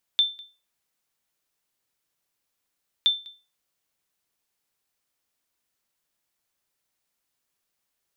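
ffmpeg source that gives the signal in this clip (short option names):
-f lavfi -i "aevalsrc='0.237*(sin(2*PI*3550*mod(t,2.87))*exp(-6.91*mod(t,2.87)/0.31)+0.0596*sin(2*PI*3550*max(mod(t,2.87)-0.2,0))*exp(-6.91*max(mod(t,2.87)-0.2,0)/0.31))':d=5.74:s=44100"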